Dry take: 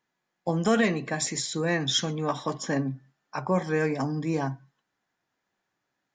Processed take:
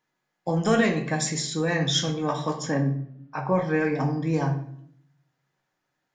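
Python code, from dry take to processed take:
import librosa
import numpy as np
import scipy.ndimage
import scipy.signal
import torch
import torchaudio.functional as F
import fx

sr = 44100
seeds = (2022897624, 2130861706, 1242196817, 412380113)

y = fx.lowpass(x, sr, hz=fx.line((2.7, 2300.0), (4.32, 5200.0)), slope=12, at=(2.7, 4.32), fade=0.02)
y = fx.room_shoebox(y, sr, seeds[0], volume_m3=110.0, walls='mixed', distance_m=0.53)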